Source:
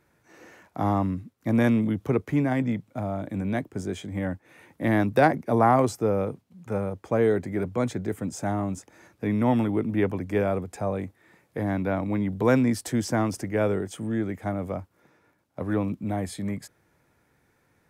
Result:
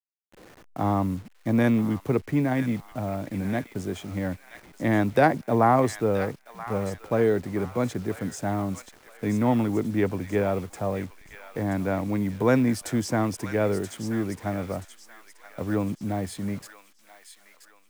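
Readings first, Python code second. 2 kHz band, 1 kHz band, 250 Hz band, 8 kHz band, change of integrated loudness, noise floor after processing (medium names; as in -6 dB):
+0.5 dB, 0.0 dB, 0.0 dB, +1.0 dB, 0.0 dB, -57 dBFS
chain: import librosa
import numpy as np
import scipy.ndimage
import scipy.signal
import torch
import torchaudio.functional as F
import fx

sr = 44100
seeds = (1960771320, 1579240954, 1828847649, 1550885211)

y = fx.delta_hold(x, sr, step_db=-44.0)
y = fx.echo_wet_highpass(y, sr, ms=979, feedback_pct=39, hz=1400.0, wet_db=-8.0)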